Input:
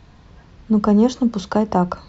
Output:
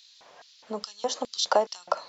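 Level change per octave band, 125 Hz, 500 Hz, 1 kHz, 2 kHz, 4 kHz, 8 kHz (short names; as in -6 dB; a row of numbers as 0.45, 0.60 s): under -30 dB, -6.5 dB, -5.0 dB, -2.5 dB, +5.5 dB, n/a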